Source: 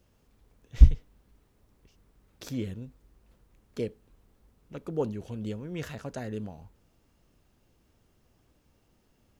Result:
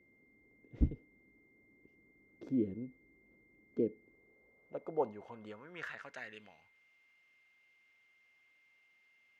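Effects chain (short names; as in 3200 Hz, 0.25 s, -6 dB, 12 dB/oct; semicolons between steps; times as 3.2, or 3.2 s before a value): band-pass sweep 310 Hz -> 2400 Hz, 3.94–6.37; whine 2100 Hz -72 dBFS; gain +4.5 dB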